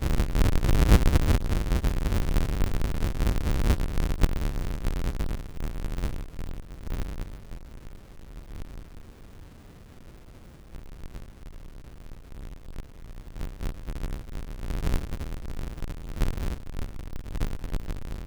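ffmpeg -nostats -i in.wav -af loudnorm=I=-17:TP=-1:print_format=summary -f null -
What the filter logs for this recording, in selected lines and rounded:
Input Integrated:    -31.1 LUFS
Input True Peak:      -8.2 dBTP
Input LRA:            19.1 LU
Input Threshold:     -42.5 LUFS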